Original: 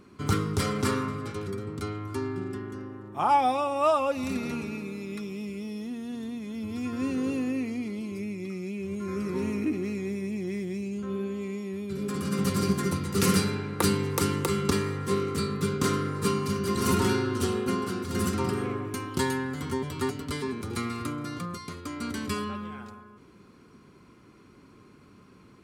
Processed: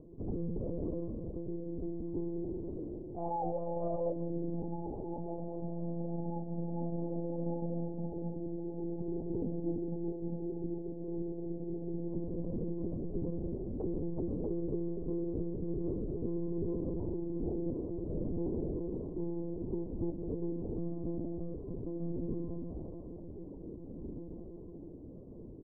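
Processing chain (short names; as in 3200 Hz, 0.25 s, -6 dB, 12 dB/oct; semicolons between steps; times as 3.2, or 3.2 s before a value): steep low-pass 710 Hz 48 dB/oct; notches 50/100/150/200 Hz; limiter -22.5 dBFS, peak gain reduction 10 dB; compressor 1.5:1, threshold -47 dBFS, peak gain reduction 7.5 dB; doubler 13 ms -11 dB; on a send: diffused feedback echo 1.72 s, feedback 62%, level -10 dB; on the sum: digital reverb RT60 0.77 s, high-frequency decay 0.3×, pre-delay 0.1 s, DRR 15.5 dB; monotone LPC vocoder at 8 kHz 170 Hz; gain +1.5 dB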